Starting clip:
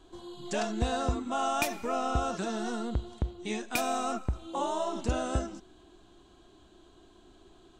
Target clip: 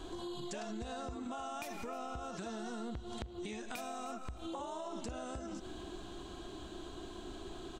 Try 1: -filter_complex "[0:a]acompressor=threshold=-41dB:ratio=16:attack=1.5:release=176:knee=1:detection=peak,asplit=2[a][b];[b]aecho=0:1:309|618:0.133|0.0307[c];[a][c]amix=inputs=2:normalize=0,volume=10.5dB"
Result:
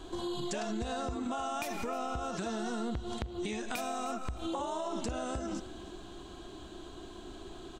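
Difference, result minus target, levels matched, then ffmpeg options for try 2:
compressor: peak gain reduction -6.5 dB
-filter_complex "[0:a]acompressor=threshold=-48dB:ratio=16:attack=1.5:release=176:knee=1:detection=peak,asplit=2[a][b];[b]aecho=0:1:309|618:0.133|0.0307[c];[a][c]amix=inputs=2:normalize=0,volume=10.5dB"

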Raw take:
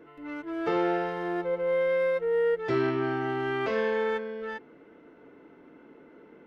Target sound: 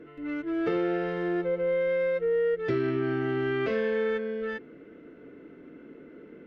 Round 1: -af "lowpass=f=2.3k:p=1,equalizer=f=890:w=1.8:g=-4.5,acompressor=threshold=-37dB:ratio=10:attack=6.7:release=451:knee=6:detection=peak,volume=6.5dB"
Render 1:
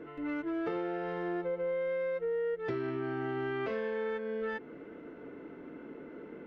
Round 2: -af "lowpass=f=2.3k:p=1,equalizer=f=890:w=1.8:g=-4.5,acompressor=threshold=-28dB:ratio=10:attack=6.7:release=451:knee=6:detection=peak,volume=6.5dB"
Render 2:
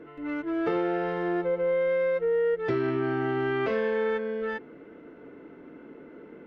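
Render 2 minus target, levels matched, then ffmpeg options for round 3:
1000 Hz band +4.0 dB
-af "lowpass=f=2.3k:p=1,equalizer=f=890:w=1.8:g=-14.5,acompressor=threshold=-28dB:ratio=10:attack=6.7:release=451:knee=6:detection=peak,volume=6.5dB"

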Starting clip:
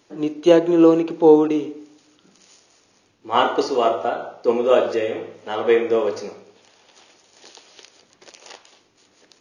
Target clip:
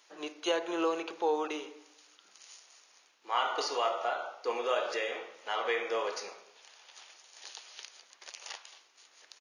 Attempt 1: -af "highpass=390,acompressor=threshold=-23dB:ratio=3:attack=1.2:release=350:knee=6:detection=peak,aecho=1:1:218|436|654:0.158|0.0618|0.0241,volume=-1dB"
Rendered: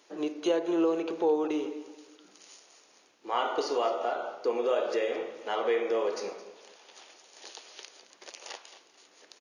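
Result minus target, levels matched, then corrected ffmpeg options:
echo-to-direct +11.5 dB; 1000 Hz band -3.5 dB
-af "highpass=930,acompressor=threshold=-23dB:ratio=3:attack=1.2:release=350:knee=6:detection=peak,aecho=1:1:218|436:0.0422|0.0164,volume=-1dB"

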